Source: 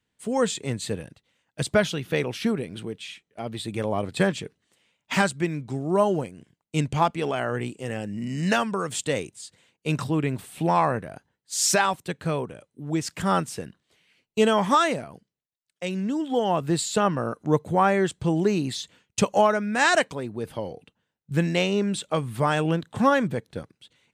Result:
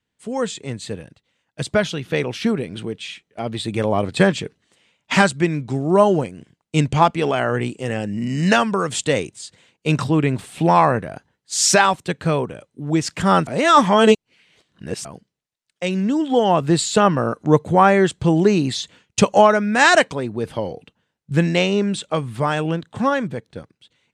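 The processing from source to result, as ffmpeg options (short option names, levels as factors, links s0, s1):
-filter_complex "[0:a]asplit=3[s0][s1][s2];[s0]atrim=end=13.472[s3];[s1]atrim=start=13.468:end=15.052,asetpts=PTS-STARTPTS,areverse[s4];[s2]atrim=start=15.048[s5];[s3][s4]acrossfade=d=0.004:c1=hsin:c2=hsin[s6];[s6][s5]acrossfade=d=0.004:c1=hsin:c2=hsin,lowpass=8500,dynaudnorm=f=150:g=31:m=3.76"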